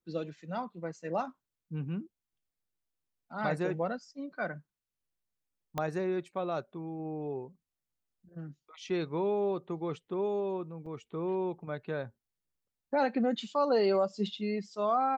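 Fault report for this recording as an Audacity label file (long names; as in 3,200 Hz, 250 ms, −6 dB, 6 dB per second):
5.780000	5.780000	click −19 dBFS
10.860000	10.860000	drop-out 4.9 ms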